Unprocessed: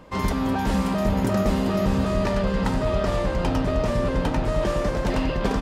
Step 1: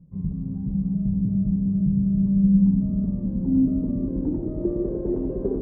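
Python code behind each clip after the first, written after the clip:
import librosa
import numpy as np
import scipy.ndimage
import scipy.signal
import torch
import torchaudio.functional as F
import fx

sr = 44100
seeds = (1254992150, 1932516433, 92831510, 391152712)

y = fx.notch(x, sr, hz=2500.0, q=20.0)
y = fx.filter_sweep_lowpass(y, sr, from_hz=160.0, to_hz=380.0, start_s=1.92, end_s=4.95, q=7.0)
y = fx.echo_bbd(y, sr, ms=148, stages=1024, feedback_pct=83, wet_db=-12.5)
y = y * librosa.db_to_amplitude(-8.0)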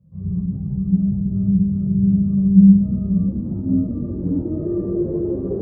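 y = scipy.signal.sosfilt(scipy.signal.butter(2, 51.0, 'highpass', fs=sr, output='sos'), x)
y = fx.room_shoebox(y, sr, seeds[0], volume_m3=3200.0, walls='furnished', distance_m=6.1)
y = fx.ensemble(y, sr)
y = y * librosa.db_to_amplitude(-1.0)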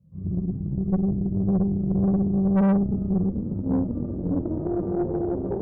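y = fx.tube_stage(x, sr, drive_db=17.0, bias=0.7)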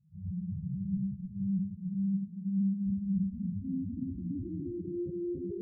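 y = fx.spec_expand(x, sr, power=3.9)
y = fx.peak_eq(y, sr, hz=950.0, db=-13.5, octaves=2.9)
y = fx.echo_feedback(y, sr, ms=283, feedback_pct=27, wet_db=-3.5)
y = y * librosa.db_to_amplitude(-6.5)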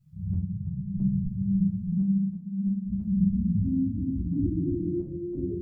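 y = fx.peak_eq(x, sr, hz=380.0, db=-8.0, octaves=0.45)
y = fx.tremolo_random(y, sr, seeds[1], hz=3.0, depth_pct=65)
y = fx.room_shoebox(y, sr, seeds[2], volume_m3=120.0, walls='furnished', distance_m=2.9)
y = y * librosa.db_to_amplitude(5.0)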